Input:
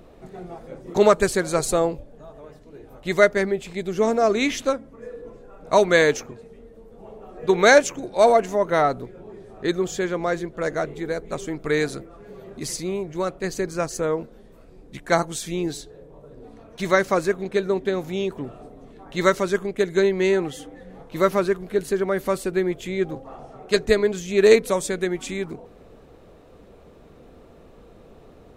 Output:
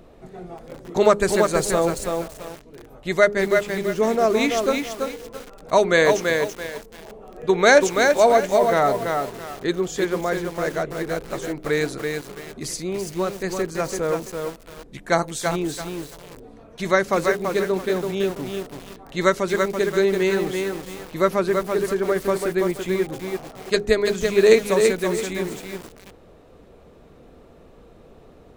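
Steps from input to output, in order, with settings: de-hum 102.7 Hz, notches 5; lo-fi delay 0.334 s, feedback 35%, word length 6-bit, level -4 dB

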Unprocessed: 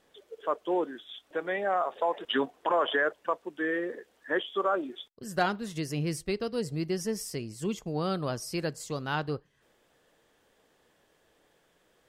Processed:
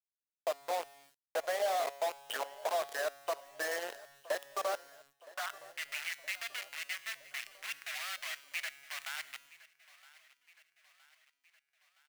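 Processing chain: de-hum 148.6 Hz, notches 8; low-pass opened by the level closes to 580 Hz, open at -24.5 dBFS; EQ curve 100 Hz 0 dB, 440 Hz -20 dB, 640 Hz +12 dB, 950 Hz +3 dB, 3000 Hz -1 dB, 9900 Hz -24 dB; compressor 12:1, threshold -36 dBFS, peak gain reduction 21 dB; companded quantiser 2-bit; resonator 140 Hz, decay 1.6 s, mix 60%; high-pass sweep 470 Hz -> 2000 Hz, 4.71–5.77; bit-crush 10-bit; on a send: feedback echo 0.967 s, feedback 56%, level -20.5 dB

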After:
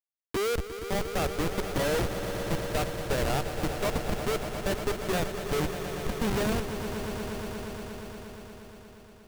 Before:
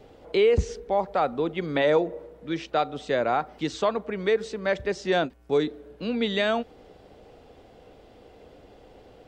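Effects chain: Schmitt trigger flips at -22.5 dBFS; swelling echo 0.118 s, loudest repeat 5, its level -11.5 dB

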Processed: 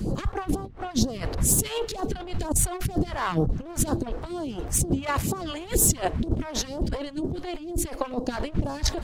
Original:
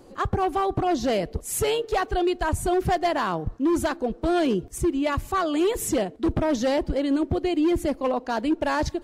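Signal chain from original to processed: one diode to ground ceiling -26 dBFS; wind noise 230 Hz -34 dBFS; 4.92–5.36 HPF 54 Hz -> 120 Hz; negative-ratio compressor -30 dBFS, ratio -0.5; phaser stages 2, 2.1 Hz, lowest notch 150–2200 Hz; gain +6.5 dB

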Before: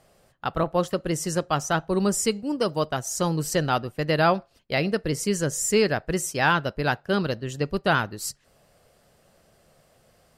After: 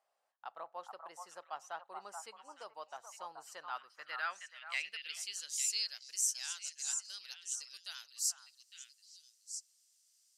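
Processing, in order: differentiator; delay with a stepping band-pass 0.429 s, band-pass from 970 Hz, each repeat 1.4 oct, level -3 dB; band-pass sweep 830 Hz -> 6100 Hz, 3.4–6.14; gain +3 dB

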